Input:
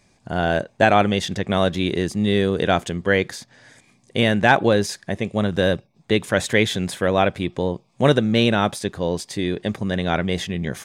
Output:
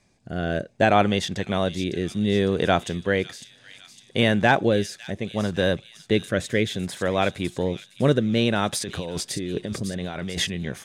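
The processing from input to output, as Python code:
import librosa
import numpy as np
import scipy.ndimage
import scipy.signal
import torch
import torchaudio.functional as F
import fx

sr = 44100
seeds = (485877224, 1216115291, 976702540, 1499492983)

p1 = fx.over_compress(x, sr, threshold_db=-28.0, ratio=-1.0, at=(8.72, 10.47), fade=0.02)
p2 = fx.rotary(p1, sr, hz=0.65)
p3 = p2 + fx.echo_wet_highpass(p2, sr, ms=555, feedback_pct=54, hz=3700.0, wet_db=-7.5, dry=0)
y = F.gain(torch.from_numpy(p3), -1.5).numpy()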